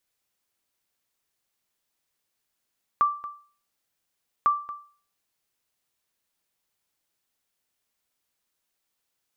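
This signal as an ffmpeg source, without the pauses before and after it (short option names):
-f lavfi -i "aevalsrc='0.211*(sin(2*PI*1170*mod(t,1.45))*exp(-6.91*mod(t,1.45)/0.42)+0.15*sin(2*PI*1170*max(mod(t,1.45)-0.23,0))*exp(-6.91*max(mod(t,1.45)-0.23,0)/0.42))':d=2.9:s=44100"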